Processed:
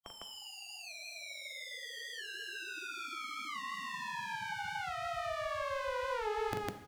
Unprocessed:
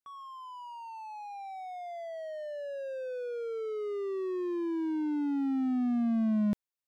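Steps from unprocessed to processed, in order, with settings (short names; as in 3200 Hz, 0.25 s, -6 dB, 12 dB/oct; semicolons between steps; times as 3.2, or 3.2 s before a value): spectral gate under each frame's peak -20 dB weak; on a send: loudspeakers at several distances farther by 14 m -6 dB, 53 m 0 dB; on the sum: non-linear reverb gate 0.27 s falling, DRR 8.5 dB; frequency shift -210 Hz; in parallel at +2 dB: compressor, threshold -57 dBFS, peak gain reduction 14 dB; on the sum: record warp 45 rpm, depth 100 cents; gain +8.5 dB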